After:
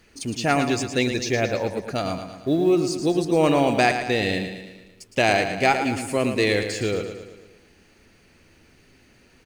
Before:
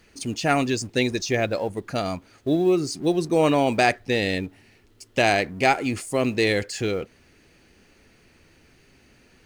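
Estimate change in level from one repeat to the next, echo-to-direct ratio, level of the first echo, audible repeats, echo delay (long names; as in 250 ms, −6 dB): −5.5 dB, −7.0 dB, −8.5 dB, 5, 112 ms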